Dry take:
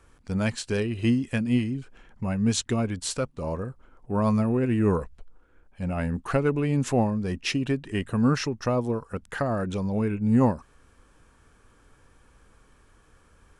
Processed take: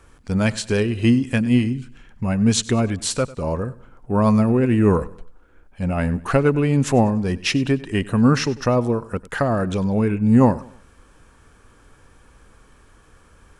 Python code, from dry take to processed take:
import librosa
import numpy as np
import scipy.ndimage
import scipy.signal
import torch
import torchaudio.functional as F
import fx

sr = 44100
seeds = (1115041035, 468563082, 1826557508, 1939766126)

y = fx.peak_eq(x, sr, hz=640.0, db=fx.line((1.72, -14.5), (2.28, -2.5)), octaves=2.0, at=(1.72, 2.28), fade=0.02)
y = fx.echo_feedback(y, sr, ms=98, feedback_pct=37, wet_db=-19.5)
y = y * 10.0 ** (6.5 / 20.0)